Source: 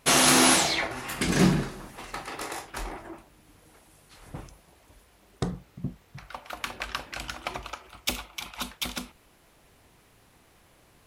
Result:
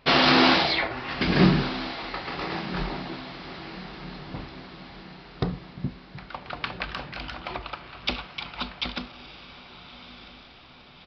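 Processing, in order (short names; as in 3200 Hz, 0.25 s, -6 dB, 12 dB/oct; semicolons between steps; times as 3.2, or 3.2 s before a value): downsampling 11025 Hz; diffused feedback echo 1.259 s, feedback 53%, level -13 dB; 6.86–7.55 transient shaper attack -6 dB, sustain +2 dB; gain +2.5 dB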